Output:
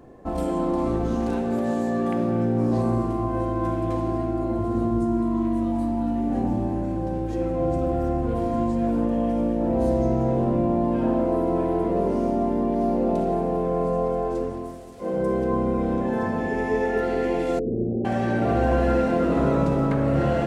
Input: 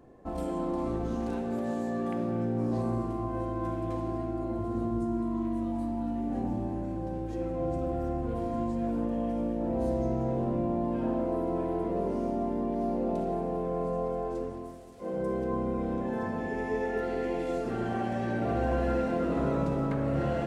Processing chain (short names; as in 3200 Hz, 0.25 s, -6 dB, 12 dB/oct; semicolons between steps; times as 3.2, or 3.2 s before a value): 17.59–18.05 steep low-pass 540 Hz 48 dB/oct; gain +7.5 dB